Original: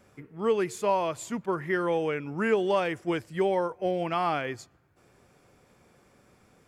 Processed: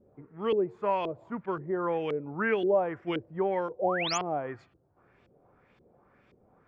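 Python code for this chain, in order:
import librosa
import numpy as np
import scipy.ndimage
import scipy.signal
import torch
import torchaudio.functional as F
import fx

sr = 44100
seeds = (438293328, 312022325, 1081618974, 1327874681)

y = fx.filter_lfo_lowpass(x, sr, shape='saw_up', hz=1.9, low_hz=370.0, high_hz=3500.0, q=2.1)
y = fx.spec_paint(y, sr, seeds[0], shape='rise', start_s=3.79, length_s=0.39, low_hz=470.0, high_hz=7500.0, level_db=-29.0)
y = F.gain(torch.from_numpy(y), -4.0).numpy()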